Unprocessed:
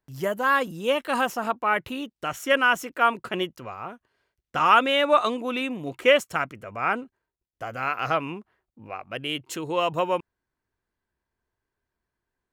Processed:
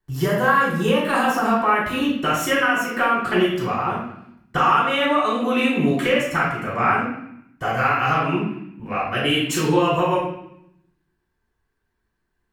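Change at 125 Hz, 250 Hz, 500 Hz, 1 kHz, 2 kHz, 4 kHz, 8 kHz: +13.5, +10.5, +3.5, +4.5, +4.0, +3.0, +7.5 dB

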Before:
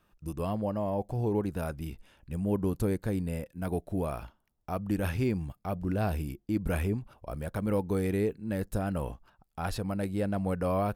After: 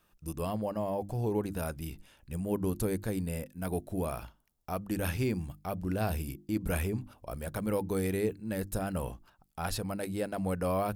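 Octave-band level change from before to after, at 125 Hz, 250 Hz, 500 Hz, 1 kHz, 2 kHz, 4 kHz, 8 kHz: -3.0, -2.5, -1.5, -1.0, 0.0, +2.5, +6.0 dB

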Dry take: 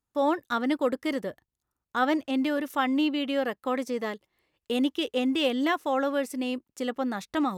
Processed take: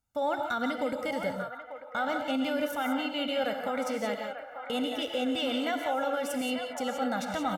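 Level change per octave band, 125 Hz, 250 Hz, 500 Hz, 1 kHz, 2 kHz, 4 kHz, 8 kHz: n/a, -5.5 dB, -2.0 dB, -1.5 dB, -1.5 dB, -0.5 dB, +2.5 dB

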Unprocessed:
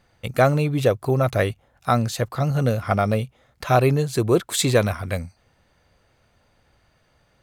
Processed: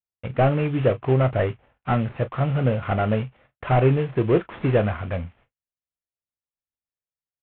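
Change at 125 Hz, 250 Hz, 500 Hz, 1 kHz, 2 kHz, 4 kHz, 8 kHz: 0.0 dB, -0.5 dB, -1.5 dB, -2.5 dB, -3.5 dB, -10.5 dB, under -40 dB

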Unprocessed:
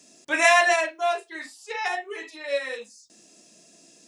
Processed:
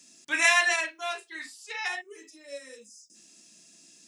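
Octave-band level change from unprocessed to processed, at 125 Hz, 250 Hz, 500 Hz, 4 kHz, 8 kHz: n/a, -7.0 dB, -12.5 dB, -1.0 dB, 0.0 dB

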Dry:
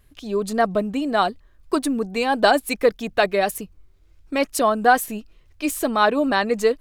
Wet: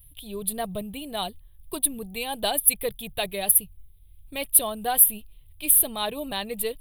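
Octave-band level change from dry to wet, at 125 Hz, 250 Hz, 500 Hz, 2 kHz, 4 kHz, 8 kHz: n/a, -12.5 dB, -12.0 dB, -13.0 dB, -2.0 dB, +11.5 dB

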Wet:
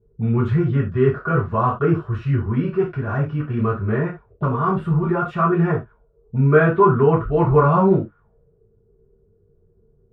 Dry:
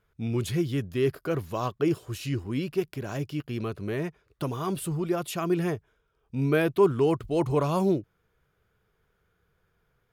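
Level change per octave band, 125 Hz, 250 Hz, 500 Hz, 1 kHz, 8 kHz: +12.0 dB, +7.5 dB, +7.5 dB, +13.0 dB, under -25 dB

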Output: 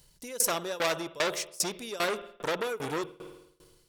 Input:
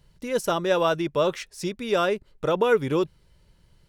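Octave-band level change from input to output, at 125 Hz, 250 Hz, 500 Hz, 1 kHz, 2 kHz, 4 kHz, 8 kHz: -12.0, -10.5, -10.0, -7.0, -2.5, -0.5, +9.5 dB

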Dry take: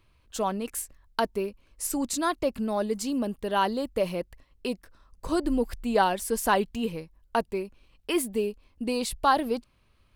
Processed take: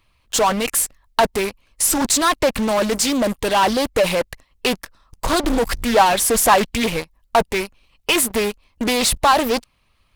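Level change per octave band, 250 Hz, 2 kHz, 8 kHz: +7.0, +12.0, +15.5 dB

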